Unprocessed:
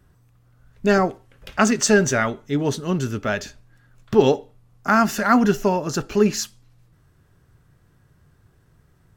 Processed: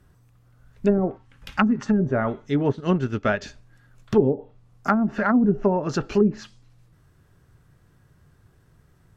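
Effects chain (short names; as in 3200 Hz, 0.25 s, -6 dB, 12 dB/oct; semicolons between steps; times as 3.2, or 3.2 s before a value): treble ducked by the level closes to 350 Hz, closed at -12.5 dBFS; 1.17–1.99 spectral gain 320–760 Hz -9 dB; 2.69–3.42 transient shaper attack +4 dB, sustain -8 dB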